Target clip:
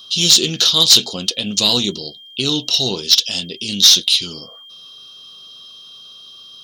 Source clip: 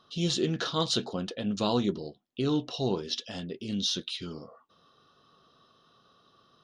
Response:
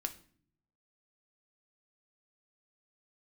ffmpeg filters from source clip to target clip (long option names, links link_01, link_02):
-af "aeval=exprs='val(0)+0.001*sin(2*PI*3200*n/s)':channel_layout=same,aexciter=amount=9.4:drive=3.6:freq=2500,acontrast=57,volume=-1dB"